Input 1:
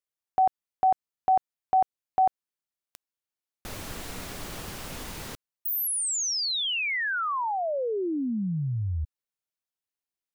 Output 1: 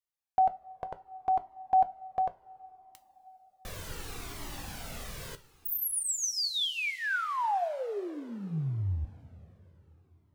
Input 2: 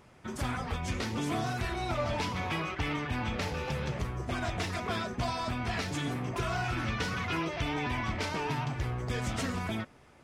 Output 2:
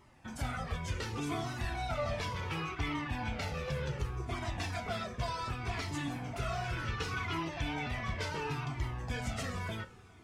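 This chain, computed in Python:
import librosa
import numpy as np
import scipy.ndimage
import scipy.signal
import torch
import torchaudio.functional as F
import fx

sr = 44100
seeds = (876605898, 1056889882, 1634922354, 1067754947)

y = fx.rev_double_slope(x, sr, seeds[0], early_s=0.24, late_s=4.4, knee_db=-21, drr_db=9.0)
y = fx.comb_cascade(y, sr, direction='falling', hz=0.68)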